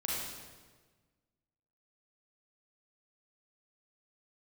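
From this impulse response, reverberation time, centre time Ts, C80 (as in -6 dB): 1.4 s, 97 ms, 0.5 dB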